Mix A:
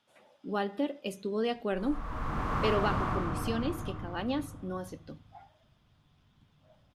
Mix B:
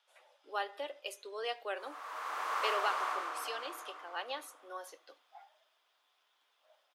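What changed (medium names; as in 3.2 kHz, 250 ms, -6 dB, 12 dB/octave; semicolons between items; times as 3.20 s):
background: add treble shelf 4 kHz +9 dB; master: add Bessel high-pass 760 Hz, order 8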